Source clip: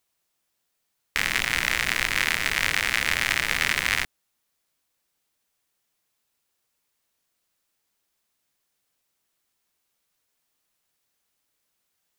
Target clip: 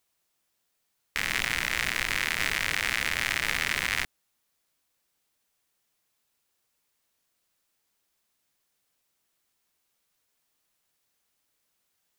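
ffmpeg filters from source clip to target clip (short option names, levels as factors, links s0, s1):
-af "alimiter=limit=0.335:level=0:latency=1:release=67"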